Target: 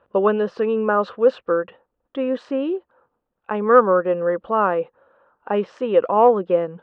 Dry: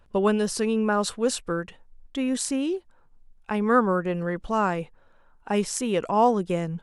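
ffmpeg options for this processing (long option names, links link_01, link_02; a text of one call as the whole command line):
ffmpeg -i in.wav -af "acontrast=36,highpass=160,equalizer=frequency=160:width_type=q:width=4:gain=-9,equalizer=frequency=240:width_type=q:width=4:gain=-4,equalizer=frequency=520:width_type=q:width=4:gain=9,equalizer=frequency=1200:width_type=q:width=4:gain=5,equalizer=frequency=2200:width_type=q:width=4:gain=-9,lowpass=frequency=2700:width=0.5412,lowpass=frequency=2700:width=1.3066,volume=-2dB" out.wav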